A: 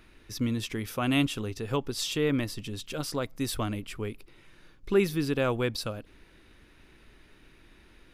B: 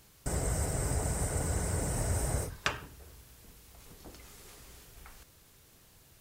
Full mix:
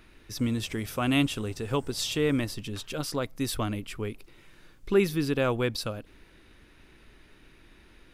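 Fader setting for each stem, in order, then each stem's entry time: +1.0 dB, -19.5 dB; 0.00 s, 0.10 s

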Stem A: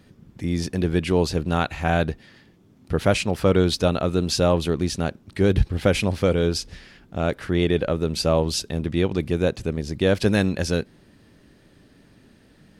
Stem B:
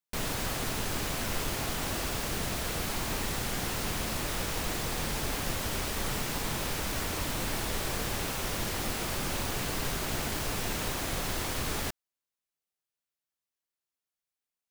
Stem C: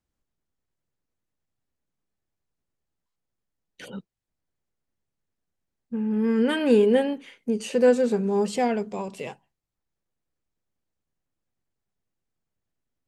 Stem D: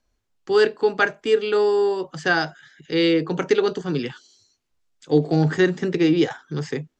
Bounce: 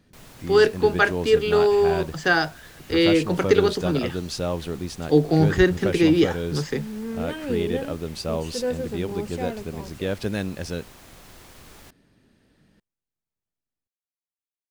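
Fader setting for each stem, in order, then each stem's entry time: -7.5 dB, -14.5 dB, -8.5 dB, +0.5 dB; 0.00 s, 0.00 s, 0.80 s, 0.00 s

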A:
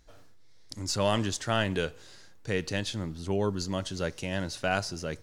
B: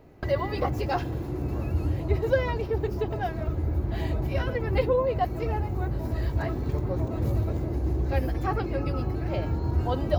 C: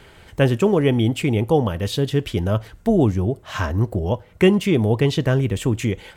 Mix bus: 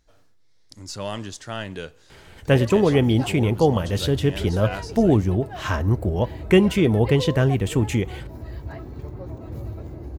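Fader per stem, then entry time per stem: -4.0 dB, -7.0 dB, -0.5 dB; 0.00 s, 2.30 s, 2.10 s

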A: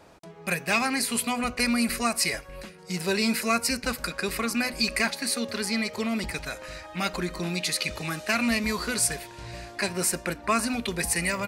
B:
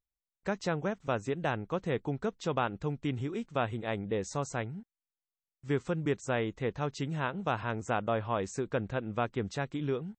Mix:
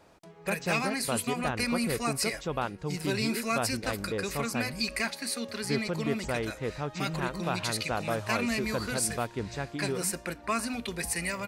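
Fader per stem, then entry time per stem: -5.5 dB, -1.0 dB; 0.00 s, 0.00 s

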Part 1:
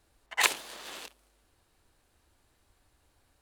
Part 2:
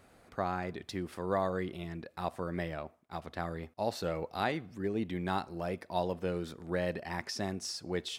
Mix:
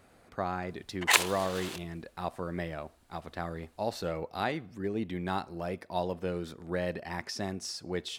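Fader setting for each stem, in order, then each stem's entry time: +2.0 dB, +0.5 dB; 0.70 s, 0.00 s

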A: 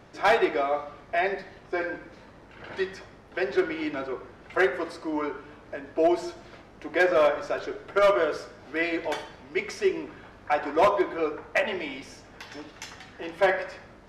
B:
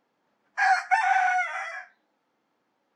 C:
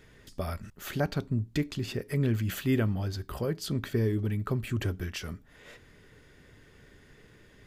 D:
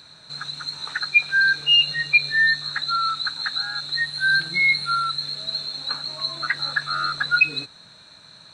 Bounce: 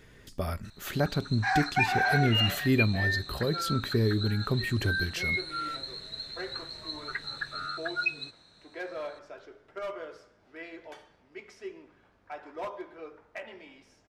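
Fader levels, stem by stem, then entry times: -16.5 dB, -6.0 dB, +1.5 dB, -12.0 dB; 1.80 s, 0.85 s, 0.00 s, 0.65 s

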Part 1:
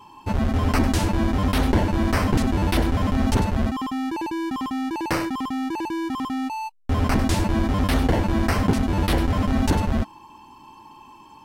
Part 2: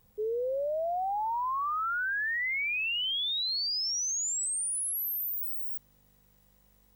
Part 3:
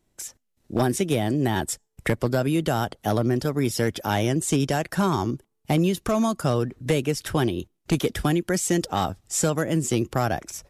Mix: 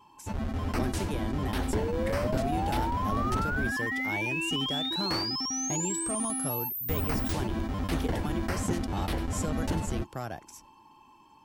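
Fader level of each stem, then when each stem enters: -10.5 dB, -2.0 dB, -13.0 dB; 0.00 s, 1.55 s, 0.00 s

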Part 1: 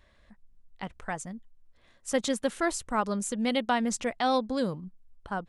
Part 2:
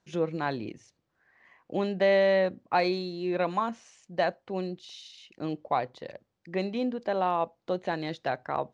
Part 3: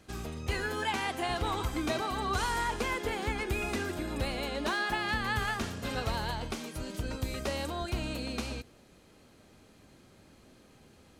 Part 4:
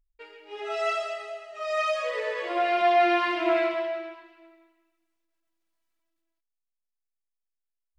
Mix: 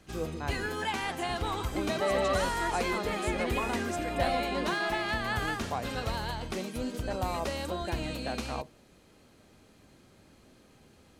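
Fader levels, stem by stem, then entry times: -10.5 dB, -7.5 dB, -0.5 dB, -12.5 dB; 0.00 s, 0.00 s, 0.00 s, 1.35 s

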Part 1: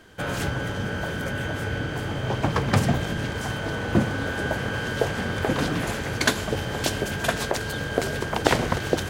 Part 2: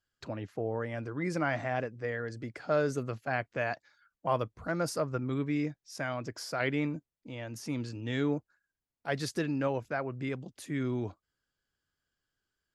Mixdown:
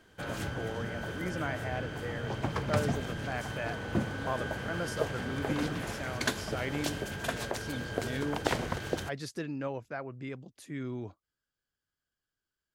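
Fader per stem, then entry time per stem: -9.5 dB, -5.0 dB; 0.00 s, 0.00 s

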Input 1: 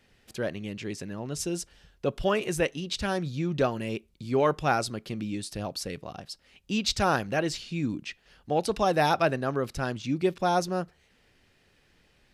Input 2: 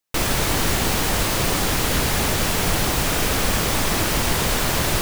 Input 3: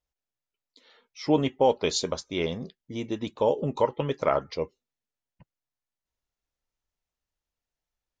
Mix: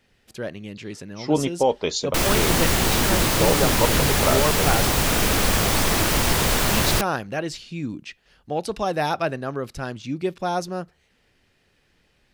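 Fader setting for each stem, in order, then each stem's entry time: 0.0 dB, +0.5 dB, +1.5 dB; 0.00 s, 2.00 s, 0.00 s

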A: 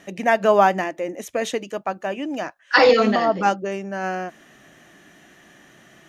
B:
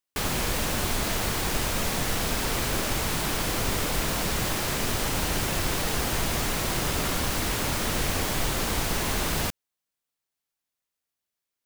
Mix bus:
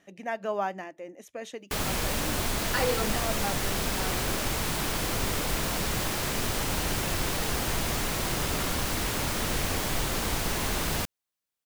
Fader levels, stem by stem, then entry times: -14.5 dB, -2.0 dB; 0.00 s, 1.55 s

